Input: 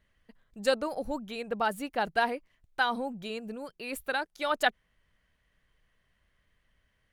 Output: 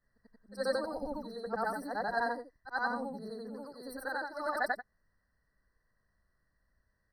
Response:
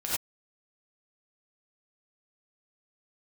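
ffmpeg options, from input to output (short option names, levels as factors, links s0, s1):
-af "afftfilt=real='re':imag='-im':win_size=8192:overlap=0.75,afftfilt=real='re*eq(mod(floor(b*sr/1024/2000),2),0)':imag='im*eq(mod(floor(b*sr/1024/2000),2),0)':win_size=1024:overlap=0.75"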